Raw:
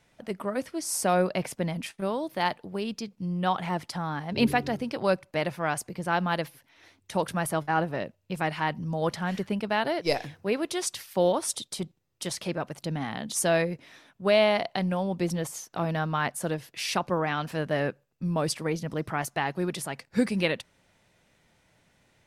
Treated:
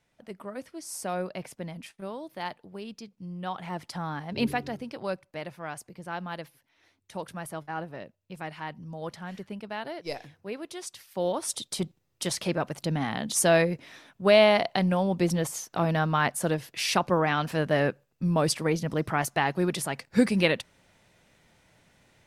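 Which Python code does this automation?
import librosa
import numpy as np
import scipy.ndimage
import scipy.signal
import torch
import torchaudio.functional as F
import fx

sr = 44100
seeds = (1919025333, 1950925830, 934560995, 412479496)

y = fx.gain(x, sr, db=fx.line((3.51, -8.0), (4.03, -1.5), (5.38, -9.0), (10.98, -9.0), (11.79, 3.0)))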